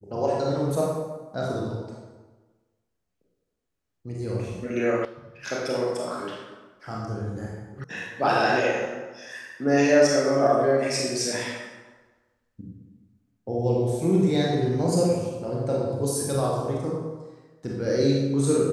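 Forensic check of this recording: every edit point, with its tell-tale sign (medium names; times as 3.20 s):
5.05 s: sound stops dead
7.84 s: sound stops dead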